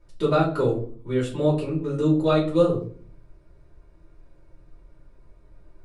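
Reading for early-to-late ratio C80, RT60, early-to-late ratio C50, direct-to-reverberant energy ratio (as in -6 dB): 12.5 dB, 0.45 s, 8.5 dB, -6.0 dB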